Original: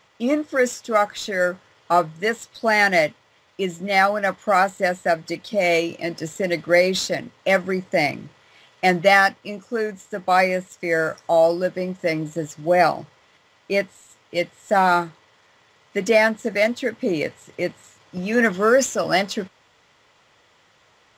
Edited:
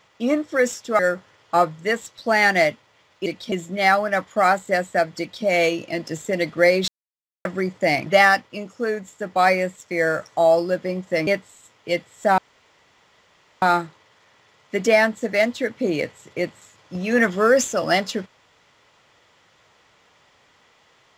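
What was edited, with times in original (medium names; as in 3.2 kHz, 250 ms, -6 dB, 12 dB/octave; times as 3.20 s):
0.99–1.36 s: delete
5.30–5.56 s: copy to 3.63 s
6.99–7.56 s: mute
8.17–8.98 s: delete
12.19–13.73 s: delete
14.84 s: insert room tone 1.24 s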